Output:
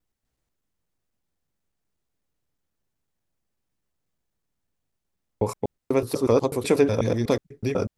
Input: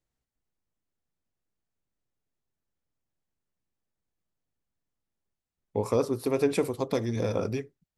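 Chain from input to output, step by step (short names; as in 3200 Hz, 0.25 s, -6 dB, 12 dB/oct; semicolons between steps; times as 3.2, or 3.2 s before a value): slices in reverse order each 0.123 s, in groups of 4; gain +5.5 dB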